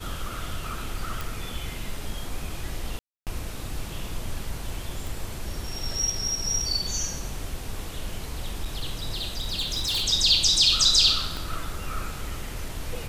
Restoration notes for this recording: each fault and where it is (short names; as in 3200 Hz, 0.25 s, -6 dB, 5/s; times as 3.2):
1.21 pop
2.99–3.27 gap 0.278 s
5.07 pop
8.6–10.04 clipped -23 dBFS
11.37 pop